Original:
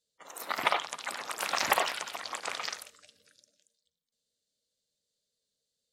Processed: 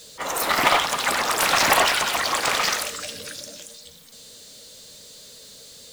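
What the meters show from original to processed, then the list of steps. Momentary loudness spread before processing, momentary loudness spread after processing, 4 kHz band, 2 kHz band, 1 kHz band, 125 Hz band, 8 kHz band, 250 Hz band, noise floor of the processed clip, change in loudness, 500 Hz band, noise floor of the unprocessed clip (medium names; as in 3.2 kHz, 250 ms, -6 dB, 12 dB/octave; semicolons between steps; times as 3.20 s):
16 LU, 17 LU, +13.0 dB, +12.0 dB, +11.5 dB, +18.0 dB, +14.0 dB, +15.5 dB, -46 dBFS, +11.5 dB, +12.0 dB, -85 dBFS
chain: power-law waveshaper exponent 0.5; trim +2.5 dB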